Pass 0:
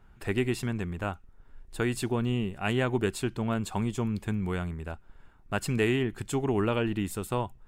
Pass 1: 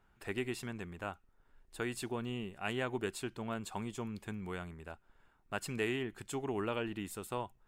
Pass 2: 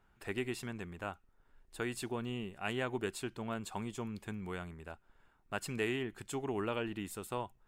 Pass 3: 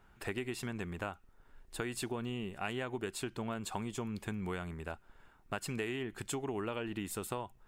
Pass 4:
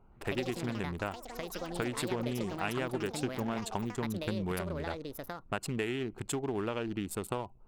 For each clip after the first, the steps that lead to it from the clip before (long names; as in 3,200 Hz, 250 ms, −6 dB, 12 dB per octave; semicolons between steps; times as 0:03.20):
low-shelf EQ 220 Hz −9.5 dB; level −6.5 dB
no processing that can be heard
downward compressor, threshold −41 dBFS, peak gain reduction 11 dB; level +6.5 dB
adaptive Wiener filter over 25 samples; delay with pitch and tempo change per echo 120 ms, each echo +6 semitones, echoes 3, each echo −6 dB; level +4 dB